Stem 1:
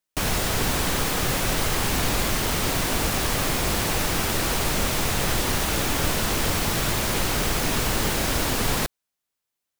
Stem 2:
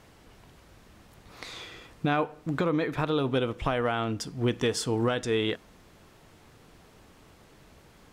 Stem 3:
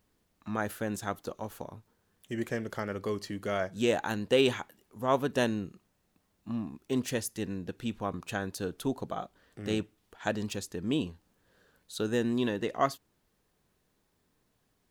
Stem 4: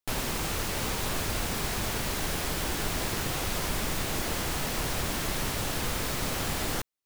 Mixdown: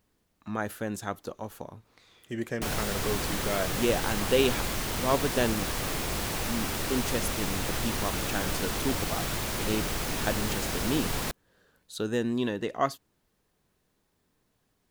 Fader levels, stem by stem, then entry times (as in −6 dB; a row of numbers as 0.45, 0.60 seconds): −7.5 dB, −18.0 dB, +0.5 dB, muted; 2.45 s, 0.55 s, 0.00 s, muted